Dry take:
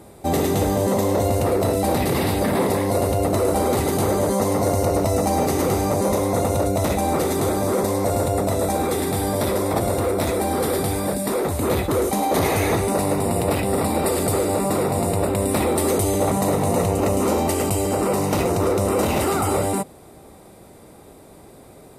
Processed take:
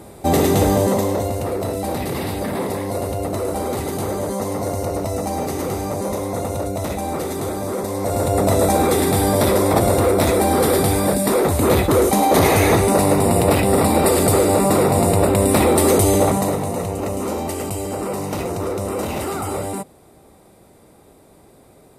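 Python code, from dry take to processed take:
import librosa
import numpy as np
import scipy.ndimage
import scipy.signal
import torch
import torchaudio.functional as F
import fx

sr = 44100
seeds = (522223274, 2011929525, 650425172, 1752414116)

y = fx.gain(x, sr, db=fx.line((0.75, 4.5), (1.35, -3.5), (7.88, -3.5), (8.5, 5.5), (16.17, 5.5), (16.72, -4.0)))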